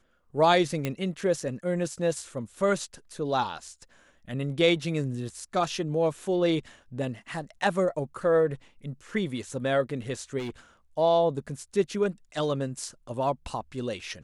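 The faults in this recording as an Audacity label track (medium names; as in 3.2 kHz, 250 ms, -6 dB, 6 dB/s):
0.850000	0.850000	pop -15 dBFS
10.380000	10.500000	clipped -30.5 dBFS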